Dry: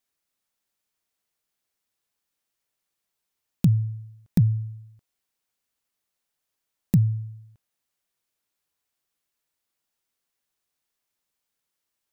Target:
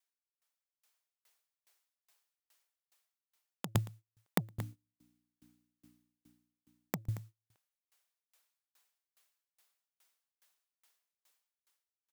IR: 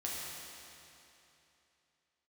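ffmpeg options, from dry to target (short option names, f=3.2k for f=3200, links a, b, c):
-filter_complex "[0:a]asettb=1/sr,asplit=3[a][b][c];[a]atrim=end=4.514[d];[b]atrim=start=4.51:end=7.02,asetpts=PTS-STARTPTS,afade=t=in:d=0.004:c=qsin,afade=t=out:st=2.506:d=0.004:c=qsin,aeval=exprs='val(0)+0.00447*(sin(2*PI*60*n/s)+sin(2*PI*2*60*n/s)/2+sin(2*PI*3*60*n/s)/3+sin(2*PI*4*60*n/s)/4+sin(2*PI*5*60*n/s)/5)':c=same[e];[c]atrim=start=7.016[f];[d][e]acrossfade=d=0.004:c1=hsin:c2=qsin[g];[g][f]acrossfade=d=0.004:c1=qsin:c2=hsin,dynaudnorm=f=320:g=5:m=16dB,agate=range=-19dB:threshold=-27dB:ratio=16:detection=peak,aeval=exprs='0.891*(cos(1*acos(clip(val(0)/0.891,-1,1)))-cos(1*PI/2))+0.00562*(cos(7*acos(clip(val(0)/0.891,-1,1)))-cos(7*PI/2))':c=same,highpass=580,aecho=1:1:114|228:0.0708|0.0255,aeval=exprs='val(0)*pow(10,-38*if(lt(mod(2.4*n/s,1),2*abs(2.4)/1000),1-mod(2.4*n/s,1)/(2*abs(2.4)/1000),(mod(2.4*n/s,1)-2*abs(2.4)/1000)/(1-2*abs(2.4)/1000))/20)':c=same,volume=17dB"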